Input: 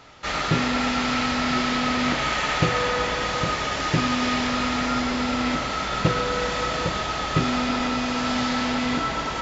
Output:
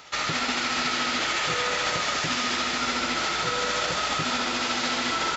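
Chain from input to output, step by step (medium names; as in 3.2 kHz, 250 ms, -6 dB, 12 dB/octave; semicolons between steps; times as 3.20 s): tilt EQ +2.5 dB/octave; peak limiter -18 dBFS, peak gain reduction 10 dB; granular stretch 0.57×, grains 145 ms; frequency-shifting echo 192 ms, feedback 45%, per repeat +97 Hz, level -6.5 dB; trim +1 dB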